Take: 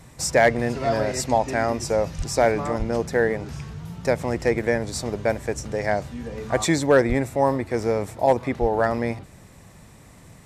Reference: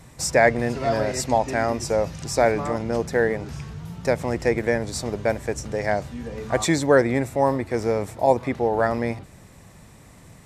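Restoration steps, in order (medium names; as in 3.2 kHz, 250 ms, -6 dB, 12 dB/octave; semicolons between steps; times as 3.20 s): clip repair -8 dBFS; de-plosive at 2.17/2.78/7.08/8.60 s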